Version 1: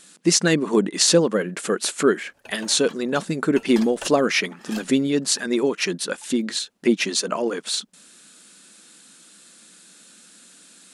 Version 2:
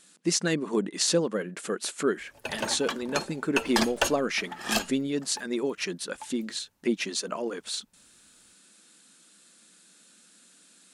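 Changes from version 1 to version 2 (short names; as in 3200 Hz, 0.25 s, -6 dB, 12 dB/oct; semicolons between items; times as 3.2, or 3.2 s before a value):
speech -8.0 dB; background +10.0 dB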